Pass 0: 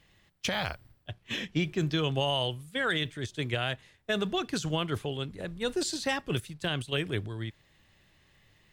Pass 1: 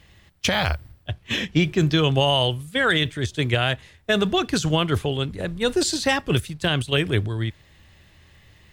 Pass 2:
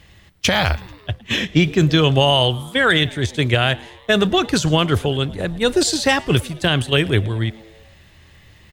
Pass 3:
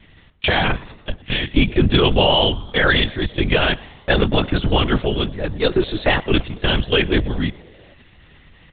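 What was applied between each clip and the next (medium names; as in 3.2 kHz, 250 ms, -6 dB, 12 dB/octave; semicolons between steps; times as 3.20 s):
peaking EQ 74 Hz +10.5 dB 0.61 oct; trim +9 dB
frequency-shifting echo 110 ms, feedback 60%, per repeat +110 Hz, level -23 dB; trim +4.5 dB
LPC vocoder at 8 kHz whisper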